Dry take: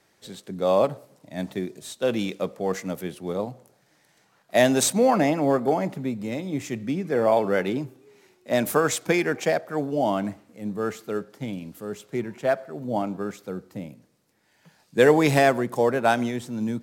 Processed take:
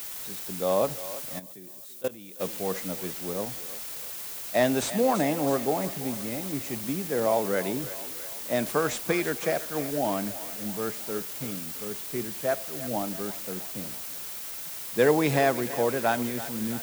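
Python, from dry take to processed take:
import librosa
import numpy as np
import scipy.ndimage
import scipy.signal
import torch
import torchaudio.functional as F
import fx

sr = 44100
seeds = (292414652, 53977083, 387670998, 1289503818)

y = fx.echo_thinned(x, sr, ms=332, feedback_pct=66, hz=440.0, wet_db=-13.5)
y = fx.dmg_noise_colour(y, sr, seeds[0], colour='violet', level_db=-30.0)
y = fx.level_steps(y, sr, step_db=20, at=(1.38, 2.39), fade=0.02)
y = fx.slew_limit(y, sr, full_power_hz=380.0)
y = F.gain(torch.from_numpy(y), -4.5).numpy()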